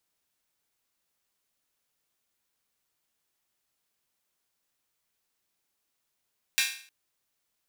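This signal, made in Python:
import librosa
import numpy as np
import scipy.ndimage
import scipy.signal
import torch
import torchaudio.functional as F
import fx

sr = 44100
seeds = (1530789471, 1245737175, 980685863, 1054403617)

y = fx.drum_hat_open(sr, length_s=0.31, from_hz=2100.0, decay_s=0.48)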